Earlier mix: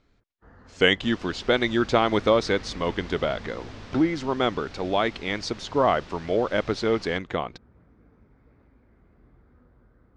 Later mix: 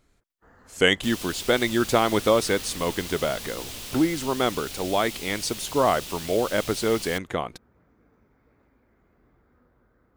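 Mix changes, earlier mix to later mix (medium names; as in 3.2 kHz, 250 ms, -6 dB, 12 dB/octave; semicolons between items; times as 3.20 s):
first sound: add bass shelf 240 Hz -9 dB; second sound: add resonant high shelf 2.2 kHz +9.5 dB, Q 1.5; master: remove low-pass 5.3 kHz 24 dB/octave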